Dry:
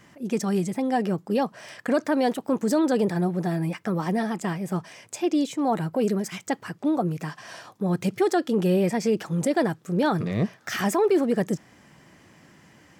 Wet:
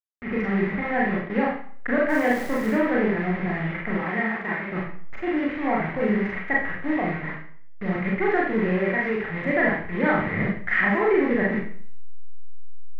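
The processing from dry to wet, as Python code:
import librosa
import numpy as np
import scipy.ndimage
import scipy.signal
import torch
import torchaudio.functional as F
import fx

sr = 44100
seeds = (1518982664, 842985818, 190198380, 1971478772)

y = fx.delta_hold(x, sr, step_db=-29.0)
y = fx.highpass(y, sr, hz=260.0, slope=6, at=(3.96, 4.7))
y = fx.low_shelf(y, sr, hz=350.0, db=-7.5, at=(8.69, 9.19))
y = fx.ladder_lowpass(y, sr, hz=2100.0, resonance_pct=80)
y = fx.dmg_crackle(y, sr, seeds[0], per_s=260.0, level_db=-39.0, at=(2.08, 2.71), fade=0.02)
y = fx.rev_schroeder(y, sr, rt60_s=0.51, comb_ms=29, drr_db=-4.0)
y = y * librosa.db_to_amplitude(7.0)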